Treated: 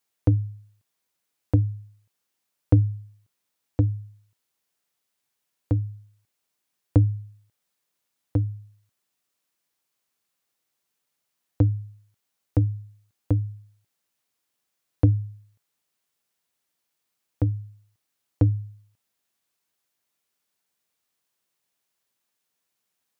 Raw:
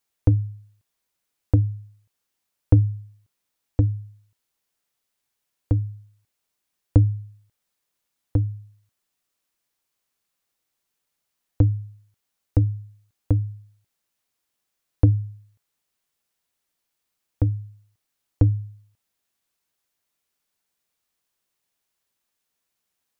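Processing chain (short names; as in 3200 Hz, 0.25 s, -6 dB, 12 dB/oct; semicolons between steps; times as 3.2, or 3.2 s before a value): HPF 90 Hz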